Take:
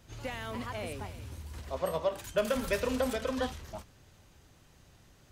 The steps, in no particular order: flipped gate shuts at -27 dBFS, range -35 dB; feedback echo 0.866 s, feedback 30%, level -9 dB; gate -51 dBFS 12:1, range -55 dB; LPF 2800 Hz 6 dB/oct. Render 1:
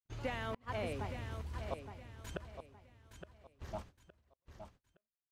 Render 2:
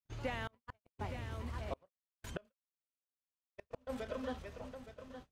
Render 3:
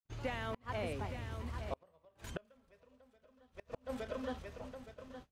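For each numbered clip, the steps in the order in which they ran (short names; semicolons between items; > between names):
LPF > flipped gate > gate > feedback echo; feedback echo > flipped gate > gate > LPF; feedback echo > gate > LPF > flipped gate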